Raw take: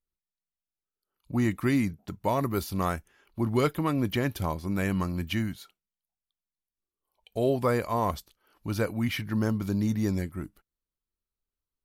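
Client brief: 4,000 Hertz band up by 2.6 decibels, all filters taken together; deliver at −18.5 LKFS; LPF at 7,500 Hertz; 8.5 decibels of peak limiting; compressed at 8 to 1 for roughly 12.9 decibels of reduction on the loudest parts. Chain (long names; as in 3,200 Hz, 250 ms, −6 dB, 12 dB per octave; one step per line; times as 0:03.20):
low-pass filter 7,500 Hz
parametric band 4,000 Hz +4 dB
downward compressor 8 to 1, threshold −34 dBFS
level +23 dB
brickwall limiter −7.5 dBFS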